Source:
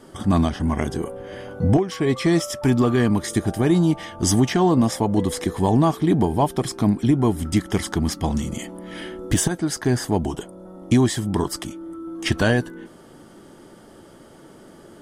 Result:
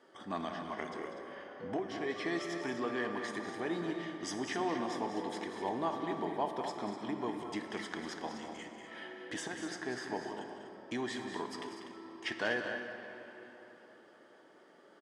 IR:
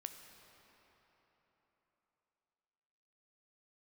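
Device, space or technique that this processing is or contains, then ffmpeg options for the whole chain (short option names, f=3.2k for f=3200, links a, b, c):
station announcement: -filter_complex "[0:a]highpass=410,lowpass=4.7k,equalizer=f=1.8k:t=o:w=0.26:g=6,aecho=1:1:192.4|244.9:0.316|0.316[a];[1:a]atrim=start_sample=2205[b];[a][b]afir=irnorm=-1:irlink=0,volume=-8.5dB"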